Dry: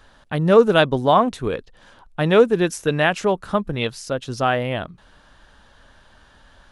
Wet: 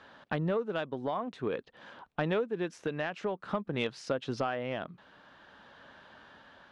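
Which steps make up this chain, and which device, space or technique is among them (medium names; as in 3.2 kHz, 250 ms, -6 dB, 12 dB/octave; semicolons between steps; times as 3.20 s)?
AM radio (band-pass 170–3400 Hz; compression 8:1, threshold -27 dBFS, peak gain reduction 19 dB; saturation -16.5 dBFS, distortion -25 dB; tremolo 0.5 Hz, depth 31%)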